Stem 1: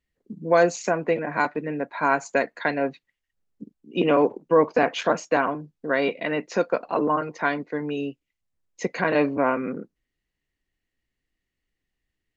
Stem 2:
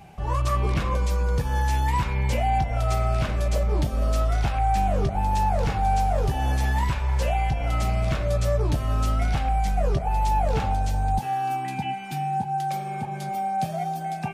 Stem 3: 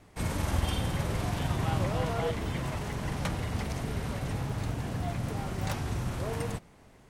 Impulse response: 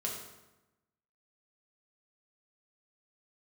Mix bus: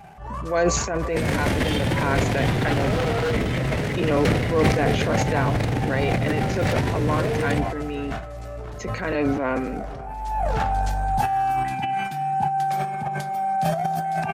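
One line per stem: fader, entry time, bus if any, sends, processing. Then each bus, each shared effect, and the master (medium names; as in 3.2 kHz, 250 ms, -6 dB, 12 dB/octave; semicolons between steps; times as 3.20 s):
-1.5 dB, 0.00 s, no send, echo send -21 dB, none
-2.5 dB, 0.00 s, send -17.5 dB, echo send -19 dB, high-order bell 1.1 kHz +8.5 dB; auto duck -23 dB, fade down 0.90 s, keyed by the first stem
+1.0 dB, 1.00 s, no send, echo send -18 dB, graphic EQ 125/250/500/2000/4000 Hz +8/+6/+10/+10/+4 dB; wavefolder -18 dBFS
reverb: on, RT60 1.0 s, pre-delay 4 ms
echo: delay 534 ms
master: peaking EQ 1 kHz -4 dB 0.88 oct; transient shaper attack -6 dB, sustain +11 dB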